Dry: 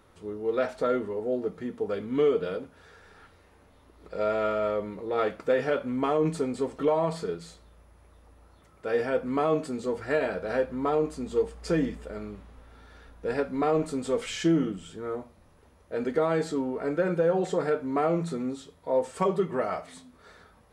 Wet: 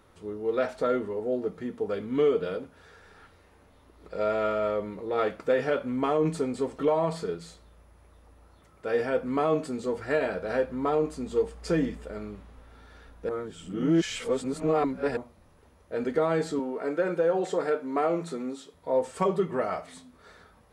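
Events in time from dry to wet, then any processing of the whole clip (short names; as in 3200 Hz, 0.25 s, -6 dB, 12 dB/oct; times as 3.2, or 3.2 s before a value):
13.29–15.17 reverse
16.59–18.74 HPF 250 Hz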